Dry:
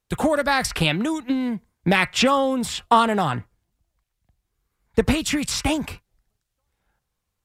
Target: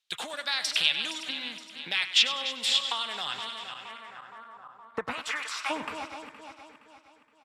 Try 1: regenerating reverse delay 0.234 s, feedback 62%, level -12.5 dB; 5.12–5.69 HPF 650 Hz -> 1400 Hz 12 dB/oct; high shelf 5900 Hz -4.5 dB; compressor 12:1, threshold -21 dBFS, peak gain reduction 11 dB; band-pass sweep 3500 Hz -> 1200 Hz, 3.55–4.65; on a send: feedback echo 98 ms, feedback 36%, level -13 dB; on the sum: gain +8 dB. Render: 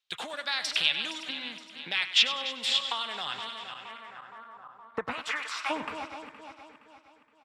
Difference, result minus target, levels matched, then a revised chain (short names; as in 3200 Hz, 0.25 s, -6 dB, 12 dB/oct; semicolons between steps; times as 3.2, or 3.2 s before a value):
8000 Hz band -3.0 dB
regenerating reverse delay 0.234 s, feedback 62%, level -12.5 dB; 5.12–5.69 HPF 650 Hz -> 1400 Hz 12 dB/oct; high shelf 5900 Hz +4.5 dB; compressor 12:1, threshold -21 dBFS, peak gain reduction 11.5 dB; band-pass sweep 3500 Hz -> 1200 Hz, 3.55–4.65; on a send: feedback echo 98 ms, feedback 36%, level -13 dB; on the sum: gain +8 dB